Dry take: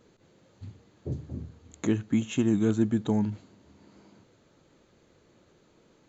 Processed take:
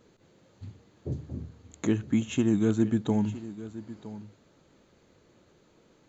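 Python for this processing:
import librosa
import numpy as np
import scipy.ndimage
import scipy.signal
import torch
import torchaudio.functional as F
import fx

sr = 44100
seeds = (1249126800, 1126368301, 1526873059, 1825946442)

y = x + 10.0 ** (-15.5 / 20.0) * np.pad(x, (int(964 * sr / 1000.0), 0))[:len(x)]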